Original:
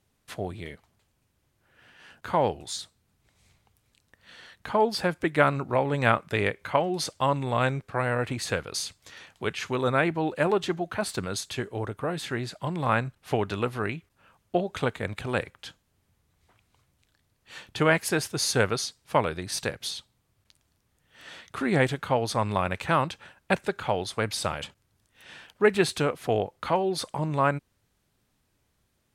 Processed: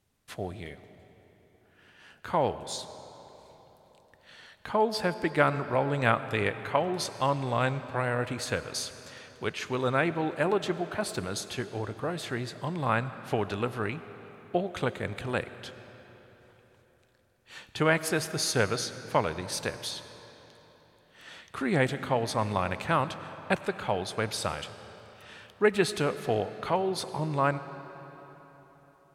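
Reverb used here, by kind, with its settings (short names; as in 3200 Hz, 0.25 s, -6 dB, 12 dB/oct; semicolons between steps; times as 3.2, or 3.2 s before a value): digital reverb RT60 4.1 s, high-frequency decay 0.75×, pre-delay 55 ms, DRR 12.5 dB; gain -2.5 dB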